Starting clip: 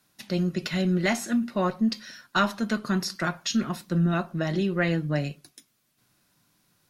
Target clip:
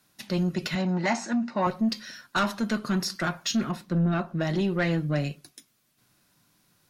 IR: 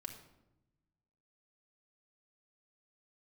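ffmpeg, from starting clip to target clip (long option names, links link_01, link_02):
-filter_complex "[0:a]asettb=1/sr,asplit=3[link_01][link_02][link_03];[link_01]atrim=end=3.714[link_04];[link_02]atrim=start=3.71:end=4.4,asetpts=PTS-STARTPTS,afade=type=in:duration=0.004:curve=qsin,afade=type=out:start_time=0.686:duration=0.004:curve=qsin,highshelf=frequency=4100:gain=-10[link_05];[link_03]atrim=start=4.396[link_06];[link_04][link_05]acrossfade=duration=0.004:curve1=hsin:curve2=qsin[link_07];[link_07][link_06]acrossfade=duration=0.004:curve1=qsin:curve2=hsin,asoftclip=type=tanh:threshold=-19.5dB,asettb=1/sr,asplit=3[link_08][link_09][link_10];[link_08]atrim=end=0.754[link_11];[link_09]atrim=start=0.75:end=1.67,asetpts=PTS-STARTPTS,afade=type=in:duration=0.004:curve=qsin,afade=type=out:start_time=0.916:duration=0.004:curve=qsin,highpass=160,equalizer=frequency=390:width_type=q:width=4:gain=-5,equalizer=frequency=900:width_type=q:width=4:gain=9,equalizer=frequency=3300:width_type=q:width=4:gain=-8,lowpass=frequency=6700:width=0.5412,lowpass=frequency=6700:width=1.3066[link_12];[link_10]atrim=start=1.666[link_13];[link_11][link_12]acrossfade=duration=0.004:curve1=hsin:curve2=qsin[link_14];[link_14][link_13]acrossfade=duration=0.004:curve1=qsin:curve2=hsin,volume=1.5dB"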